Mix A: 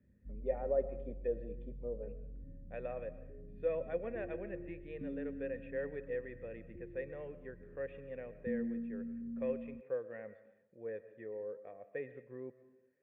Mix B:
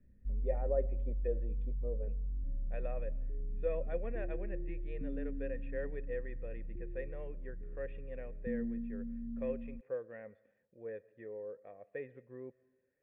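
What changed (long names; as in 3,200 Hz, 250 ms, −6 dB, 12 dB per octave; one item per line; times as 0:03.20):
speech: send −10.0 dB
master: remove high-pass filter 86 Hz 12 dB per octave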